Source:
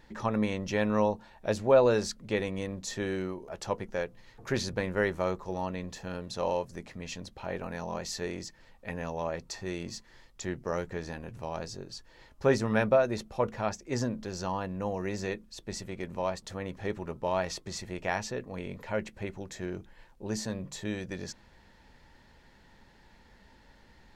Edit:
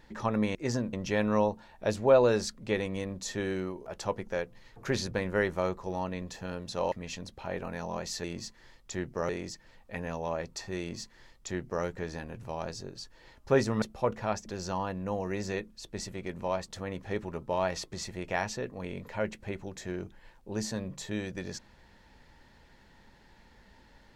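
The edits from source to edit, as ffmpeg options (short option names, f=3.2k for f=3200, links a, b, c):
-filter_complex "[0:a]asplit=8[a][b][c][d][e][f][g][h];[a]atrim=end=0.552[i];[b]atrim=start=13.818:end=14.202[j];[c]atrim=start=0.548:end=6.542[k];[d]atrim=start=6.908:end=8.232[l];[e]atrim=start=9.738:end=10.792[m];[f]atrim=start=8.228:end=12.762[n];[g]atrim=start=13.178:end=13.822[o];[h]atrim=start=14.198[p];[i][j]acrossfade=d=0.004:c1=hsin:c2=hsin[q];[q][k]acrossfade=d=0.004:c1=hsin:c2=hsin[r];[r][l]acrossfade=d=0.004:c1=hsin:c2=hsin[s];[s][m]acrossfade=d=0.004:c1=hsin:c2=hsin[t];[t][n]acrossfade=d=0.004:c1=hsin:c2=hsin[u];[u][o]acrossfade=d=0.004:c1=hsin:c2=hsin[v];[v][p]acrossfade=d=0.004:c1=hsin:c2=hsin"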